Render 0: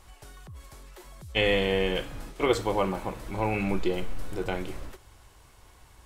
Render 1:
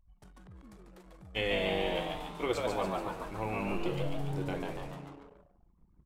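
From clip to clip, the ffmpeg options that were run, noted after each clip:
-filter_complex "[0:a]asplit=8[s0][s1][s2][s3][s4][s5][s6][s7];[s1]adelay=143,afreqshift=140,volume=0.708[s8];[s2]adelay=286,afreqshift=280,volume=0.363[s9];[s3]adelay=429,afreqshift=420,volume=0.184[s10];[s4]adelay=572,afreqshift=560,volume=0.0944[s11];[s5]adelay=715,afreqshift=700,volume=0.0479[s12];[s6]adelay=858,afreqshift=840,volume=0.0245[s13];[s7]adelay=1001,afreqshift=980,volume=0.0124[s14];[s0][s8][s9][s10][s11][s12][s13][s14]amix=inputs=8:normalize=0,anlmdn=0.0251,volume=0.376"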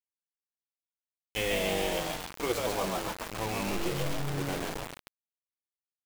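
-af "acrusher=bits=5:mix=0:aa=0.000001,volume=1.12"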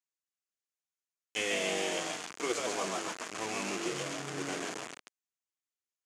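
-af "highpass=280,equalizer=f=540:t=q:w=4:g=-6,equalizer=f=870:t=q:w=4:g=-6,equalizer=f=3900:t=q:w=4:g=-4,equalizer=f=6700:t=q:w=4:g=6,lowpass=f=9200:w=0.5412,lowpass=f=9200:w=1.3066"

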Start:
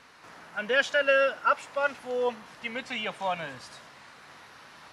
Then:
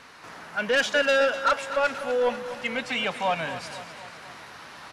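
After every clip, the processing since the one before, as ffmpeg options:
-af "asoftclip=type=tanh:threshold=0.075,aecho=1:1:248|496|744|992|1240|1488|1736:0.237|0.14|0.0825|0.0487|0.0287|0.017|0.01,volume=2"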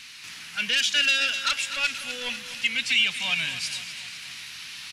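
-af "firequalizer=gain_entry='entry(140,0);entry(530,-17);entry(2500,14)':delay=0.05:min_phase=1,alimiter=limit=0.376:level=0:latency=1:release=239,volume=0.708"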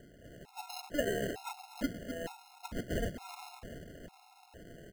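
-af "lowpass=1400,acrusher=samples=38:mix=1:aa=0.000001,afftfilt=real='re*gt(sin(2*PI*1.1*pts/sr)*(1-2*mod(floor(b*sr/1024/710),2)),0)':imag='im*gt(sin(2*PI*1.1*pts/sr)*(1-2*mod(floor(b*sr/1024/710),2)),0)':win_size=1024:overlap=0.75"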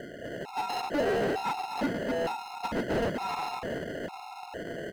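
-filter_complex "[0:a]asplit=2[s0][s1];[s1]highpass=f=720:p=1,volume=28.2,asoftclip=type=tanh:threshold=0.112[s2];[s0][s2]amix=inputs=2:normalize=0,lowpass=f=1500:p=1,volume=0.501"

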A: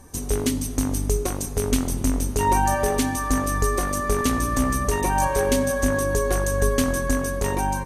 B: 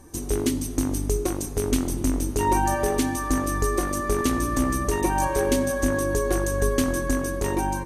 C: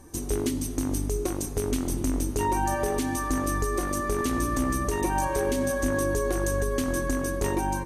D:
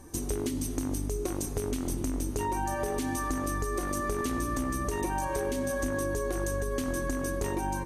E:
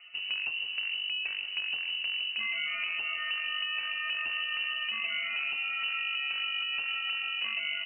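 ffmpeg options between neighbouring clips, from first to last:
-af "equalizer=f=330:w=5.9:g=13,volume=0.75"
-af "alimiter=limit=0.188:level=0:latency=1:release=142,volume=0.891"
-af "acompressor=threshold=0.0447:ratio=6"
-af "lowpass=f=2600:t=q:w=0.5098,lowpass=f=2600:t=q:w=0.6013,lowpass=f=2600:t=q:w=0.9,lowpass=f=2600:t=q:w=2.563,afreqshift=-3000,volume=0.75"

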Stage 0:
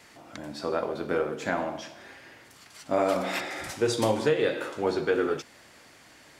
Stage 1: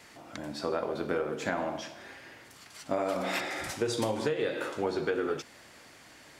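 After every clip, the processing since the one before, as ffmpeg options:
-af "acompressor=threshold=0.0501:ratio=6"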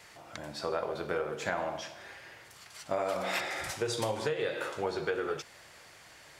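-af "equalizer=f=260:w=2:g=-11.5"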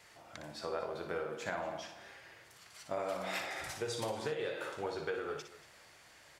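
-af "aecho=1:1:59|236:0.398|0.126,volume=0.501"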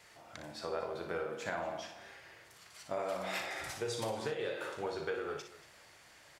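-filter_complex "[0:a]asplit=2[s0][s1];[s1]adelay=36,volume=0.237[s2];[s0][s2]amix=inputs=2:normalize=0"

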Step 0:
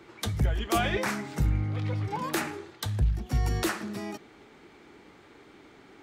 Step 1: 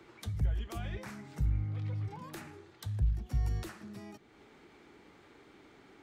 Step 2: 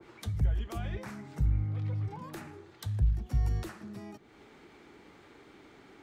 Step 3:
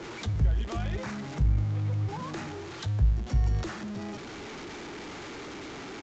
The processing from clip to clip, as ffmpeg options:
-filter_complex "[0:a]acrossover=split=150[s0][s1];[s1]acompressor=threshold=0.00282:ratio=2[s2];[s0][s2]amix=inputs=2:normalize=0,volume=0.631"
-af "adynamicequalizer=threshold=0.001:dfrequency=1600:dqfactor=0.7:tfrequency=1600:tqfactor=0.7:attack=5:release=100:ratio=0.375:range=2:mode=cutabove:tftype=highshelf,volume=1.41"
-af "aeval=exprs='val(0)+0.5*0.0112*sgn(val(0))':c=same,aresample=16000,aresample=44100,volume=1.33"

